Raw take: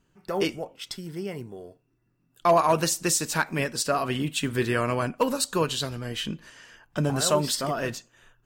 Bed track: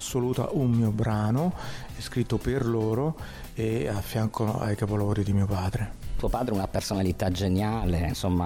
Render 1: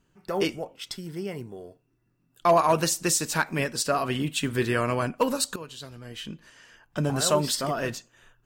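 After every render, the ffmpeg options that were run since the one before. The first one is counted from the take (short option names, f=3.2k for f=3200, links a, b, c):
-filter_complex "[0:a]asplit=2[a][b];[a]atrim=end=5.56,asetpts=PTS-STARTPTS,afade=t=out:st=5.556:d=0.004:c=hsin:silence=0.133352[c];[b]atrim=start=5.56,asetpts=PTS-STARTPTS,afade=t=in:d=1.7:silence=0.133352[d];[c][d]concat=n=2:v=0:a=1"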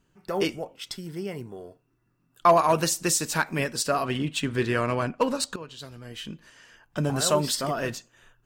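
-filter_complex "[0:a]asettb=1/sr,asplit=3[a][b][c];[a]atrim=end=1.454[d];[b]atrim=start=1.45:end=2.52,asetpts=PTS-STARTPTS,afade=t=in:d=0.004:c=qsin,afade=t=out:st=1.066:d=0.004:c=qsin,equalizer=f=1.2k:w=1.5:g=6[e];[c]atrim=start=2.516[f];[d][e]acrossfade=d=0.004:c1=hsin:c2=qsin[g];[g][f]acrossfade=d=0.004:c1=qsin:c2=hsin,asettb=1/sr,asplit=3[h][i][j];[h]atrim=end=4.054[k];[i]atrim=start=4.05:end=5.79,asetpts=PTS-STARTPTS,afade=t=in:d=0.004:c=qsin,afade=t=out:st=1.736:d=0.004:c=qsin,adynamicsmooth=sensitivity=7:basefreq=5.6k[l];[j]atrim=start=5.786[m];[k][l]acrossfade=d=0.004:c1=hsin:c2=qsin[n];[n][m]acrossfade=d=0.004:c1=qsin:c2=hsin"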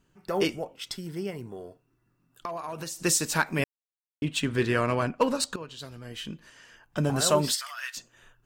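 -filter_complex "[0:a]asettb=1/sr,asplit=3[a][b][c];[a]atrim=end=1.304[d];[b]atrim=start=1.3:end=3.05,asetpts=PTS-STARTPTS,afade=t=in:d=0.004:c=qsin,afade=t=out:st=1.746:d=0.004:c=qsin,acompressor=threshold=-33dB:ratio=6:attack=3.2:release=140:knee=1:detection=peak[e];[c]atrim=start=3.046[f];[d][e]acrossfade=d=0.004:c1=hsin:c2=qsin[g];[g][f]acrossfade=d=0.004:c1=qsin:c2=hsin,asettb=1/sr,asplit=3[h][i][j];[h]atrim=end=7.544[k];[i]atrim=start=7.54:end=7.97,asetpts=PTS-STARTPTS,afade=t=in:d=0.004:c=qsin,afade=t=out:st=0.426:d=0.004:c=qsin,highpass=f=1.4k:w=0.5412,highpass=f=1.4k:w=1.3066[l];[j]atrim=start=7.966[m];[k][l]acrossfade=d=0.004:c1=hsin:c2=qsin[n];[n][m]acrossfade=d=0.004:c1=qsin:c2=hsin,asplit=3[o][p][q];[o]atrim=end=3.64,asetpts=PTS-STARTPTS,afade=t=out:st=3.636:d=0.004:c=hsin[r];[p]atrim=start=3.64:end=4.22,asetpts=PTS-STARTPTS,volume=0[s];[q]atrim=start=4.22,asetpts=PTS-STARTPTS,afade=t=in:d=0.004:c=hsin[t];[r][s][t]concat=n=3:v=0:a=1"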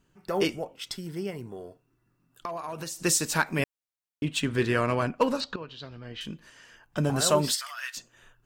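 -filter_complex "[0:a]asettb=1/sr,asplit=3[a][b][c];[a]atrim=end=5.404[d];[b]atrim=start=5.4:end=6.21,asetpts=PTS-STARTPTS,afade=t=in:d=0.004:c=qsin,afade=t=out:st=0.806:d=0.004:c=qsin,lowpass=f=4.6k:w=0.5412,lowpass=f=4.6k:w=1.3066[e];[c]atrim=start=6.206[f];[d][e]acrossfade=d=0.004:c1=hsin:c2=qsin[g];[g][f]acrossfade=d=0.004:c1=qsin:c2=hsin"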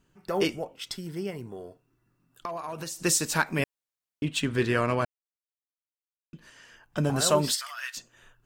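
-filter_complex "[0:a]asplit=3[a][b][c];[a]atrim=end=5.05,asetpts=PTS-STARTPTS,afade=t=out:st=5.046:d=0.004:c=hsin[d];[b]atrim=start=5.05:end=6.33,asetpts=PTS-STARTPTS,volume=0[e];[c]atrim=start=6.33,asetpts=PTS-STARTPTS,afade=t=in:d=0.004:c=hsin[f];[d][e][f]concat=n=3:v=0:a=1"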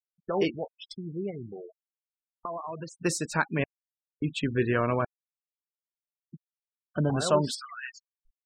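-af "afftfilt=real='re*gte(hypot(re,im),0.0282)':imag='im*gte(hypot(re,im),0.0282)':win_size=1024:overlap=0.75,highshelf=f=3.9k:g=-11"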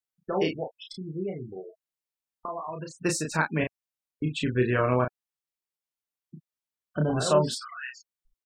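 -filter_complex "[0:a]asplit=2[a][b];[b]adelay=32,volume=-4dB[c];[a][c]amix=inputs=2:normalize=0"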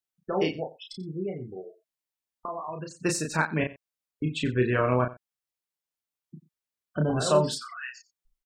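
-af "aecho=1:1:89:0.119"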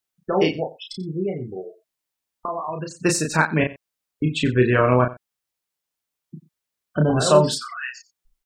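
-af "volume=7dB"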